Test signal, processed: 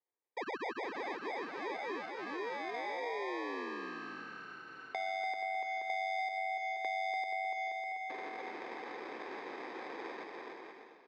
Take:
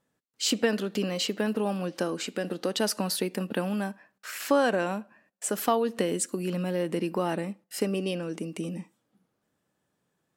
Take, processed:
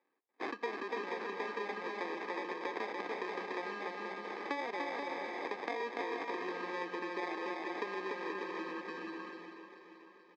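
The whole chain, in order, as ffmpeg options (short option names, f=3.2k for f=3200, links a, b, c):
-filter_complex "[0:a]asplit=2[a][b];[b]aecho=0:1:436|872|1308|1744|2180:0.178|0.0978|0.0538|0.0296|0.0163[c];[a][c]amix=inputs=2:normalize=0,acrusher=samples=31:mix=1:aa=0.000001,asplit=2[d][e];[e]aecho=0:1:290|478.5|601|680.7|732.4:0.631|0.398|0.251|0.158|0.1[f];[d][f]amix=inputs=2:normalize=0,acompressor=threshold=-34dB:ratio=4,highpass=f=350:w=0.5412,highpass=f=350:w=1.3066,equalizer=f=610:t=q:w=4:g=-10,equalizer=f=1.5k:t=q:w=4:g=7,equalizer=f=3.3k:t=q:w=4:g=-9,lowpass=f=4.1k:w=0.5412,lowpass=f=4.1k:w=1.3066,volume=1dB"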